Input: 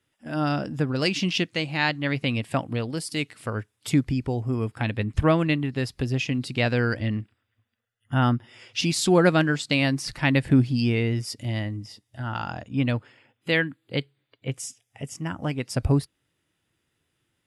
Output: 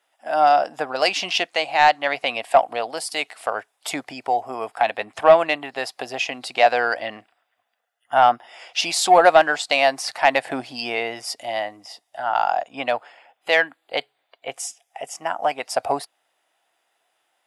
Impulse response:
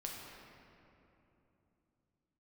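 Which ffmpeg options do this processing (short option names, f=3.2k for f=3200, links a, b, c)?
-af "highpass=f=720:t=q:w=5.4,acontrast=44,volume=-1dB"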